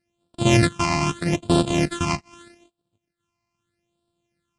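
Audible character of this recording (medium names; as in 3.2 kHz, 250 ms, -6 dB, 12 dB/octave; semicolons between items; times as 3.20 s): a buzz of ramps at a fixed pitch in blocks of 128 samples; phasing stages 8, 0.8 Hz, lowest notch 460–2000 Hz; AAC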